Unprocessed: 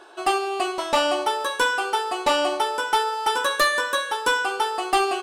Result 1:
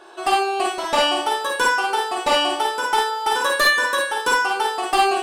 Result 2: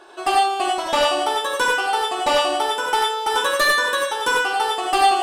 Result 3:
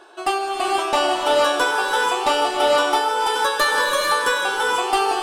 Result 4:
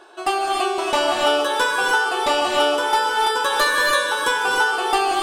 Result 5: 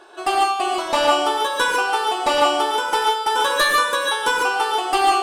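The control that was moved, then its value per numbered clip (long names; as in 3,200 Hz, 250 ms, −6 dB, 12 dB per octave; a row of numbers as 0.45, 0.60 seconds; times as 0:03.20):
reverb whose tail is shaped and stops, gate: 80, 120, 520, 330, 170 milliseconds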